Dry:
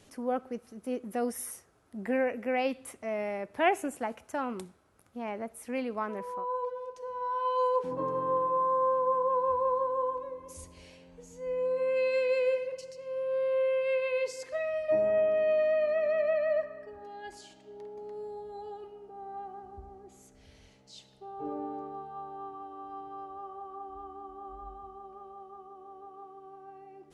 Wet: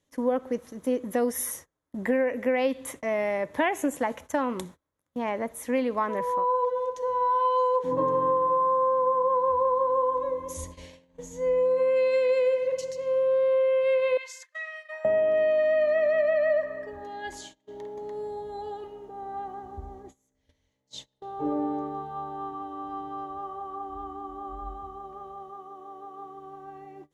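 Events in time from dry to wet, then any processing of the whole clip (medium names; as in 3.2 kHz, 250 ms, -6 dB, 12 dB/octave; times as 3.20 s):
14.17–15.05 s: ladder high-pass 1.1 kHz, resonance 30%
25.50–26.19 s: bass shelf 120 Hz -11.5 dB
whole clip: gate -51 dBFS, range -26 dB; rippled EQ curve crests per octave 1.1, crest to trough 7 dB; compression, threshold -29 dBFS; trim +8 dB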